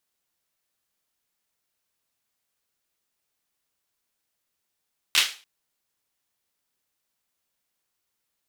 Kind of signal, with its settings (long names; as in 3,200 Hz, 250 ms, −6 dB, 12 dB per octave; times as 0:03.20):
synth clap length 0.29 s, bursts 3, apart 13 ms, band 3,000 Hz, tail 0.35 s